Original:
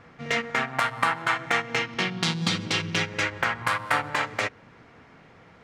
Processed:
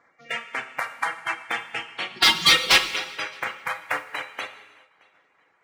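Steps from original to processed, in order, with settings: bin magnitudes rounded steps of 30 dB; reverb removal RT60 0.71 s; HPF 670 Hz 6 dB/oct; reverb removal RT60 1.2 s; 2.16–2.78 overdrive pedal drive 24 dB, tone 5600 Hz, clips at -9 dBFS; on a send: tape echo 0.621 s, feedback 32%, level -21 dB, low-pass 5900 Hz; on the sum: non-linear reverb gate 0.45 s falling, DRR 4 dB; upward expander 1.5:1, over -37 dBFS; gain +3 dB

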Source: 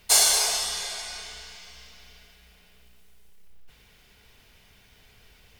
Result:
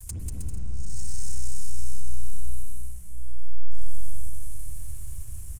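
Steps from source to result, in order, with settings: CVSD 64 kbps; gate with hold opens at -49 dBFS; inverse Chebyshev band-stop 270–3700 Hz, stop band 50 dB; treble ducked by the level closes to 730 Hz, closed at -33 dBFS; sample leveller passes 3; compressor 2:1, threshold -44 dBFS, peak gain reduction 4.5 dB; on a send: bouncing-ball echo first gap 0.19 s, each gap 0.65×, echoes 5; on the sum: spring tank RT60 3.9 s, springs 44/50/55 ms, chirp 70 ms, DRR 1 dB; gain +9 dB

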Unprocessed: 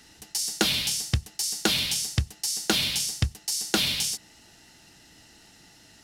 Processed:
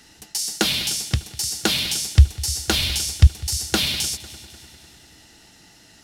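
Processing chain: 2.16–3.27 resonant low shelf 110 Hz +12 dB, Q 1.5; multi-head echo 0.1 s, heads second and third, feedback 58%, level -20 dB; gain +3 dB

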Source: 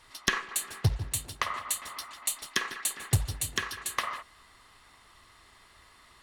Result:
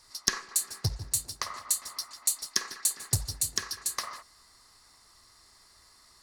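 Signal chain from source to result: resonant high shelf 3900 Hz +7.5 dB, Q 3; gain -5 dB

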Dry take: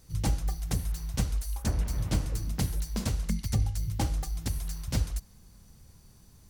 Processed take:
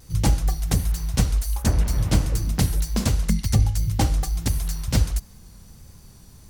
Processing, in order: vibrato 1.4 Hz 35 cents; gain +8.5 dB

